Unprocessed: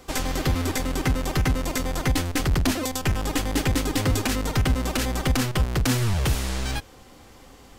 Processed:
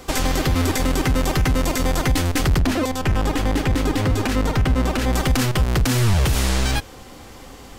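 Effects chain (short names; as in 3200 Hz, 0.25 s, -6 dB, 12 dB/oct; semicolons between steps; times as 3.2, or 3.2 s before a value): limiter -19.5 dBFS, peak gain reduction 7 dB; 2.6–5.13 high shelf 4000 Hz -9.5 dB; gain +8 dB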